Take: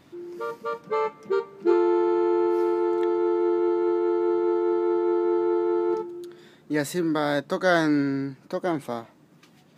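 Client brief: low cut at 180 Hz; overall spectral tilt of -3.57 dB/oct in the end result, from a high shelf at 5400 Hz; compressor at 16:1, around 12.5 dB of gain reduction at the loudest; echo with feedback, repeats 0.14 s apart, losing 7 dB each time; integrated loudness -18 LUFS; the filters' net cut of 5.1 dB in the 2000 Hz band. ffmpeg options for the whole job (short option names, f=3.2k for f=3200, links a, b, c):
-af "highpass=180,equalizer=f=2k:t=o:g=-8,highshelf=f=5.4k:g=5.5,acompressor=threshold=-28dB:ratio=16,aecho=1:1:140|280|420|560|700:0.447|0.201|0.0905|0.0407|0.0183,volume=13.5dB"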